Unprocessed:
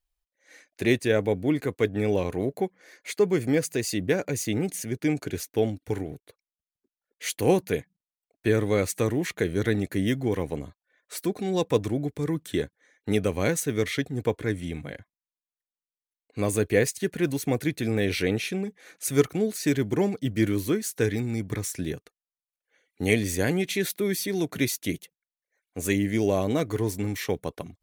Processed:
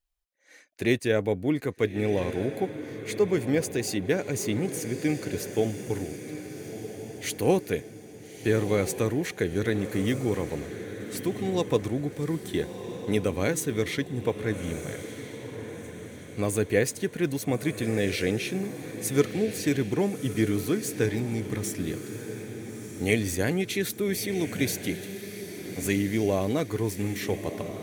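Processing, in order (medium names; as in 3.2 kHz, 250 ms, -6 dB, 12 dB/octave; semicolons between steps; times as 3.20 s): echo that smears into a reverb 1302 ms, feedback 47%, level -10 dB; trim -1.5 dB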